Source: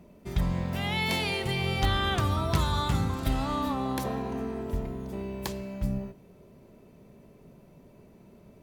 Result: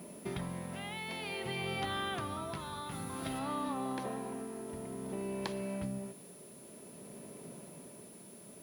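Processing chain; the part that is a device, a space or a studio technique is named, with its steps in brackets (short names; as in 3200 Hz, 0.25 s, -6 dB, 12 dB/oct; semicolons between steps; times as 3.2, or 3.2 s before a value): medium wave at night (BPF 180–3700 Hz; compressor 5:1, threshold -41 dBFS, peak gain reduction 14.5 dB; tremolo 0.54 Hz, depth 49%; whine 10000 Hz -61 dBFS; white noise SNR 22 dB); 2.91–3.39 bell 16000 Hz +6 dB 1.9 oct; gain +6 dB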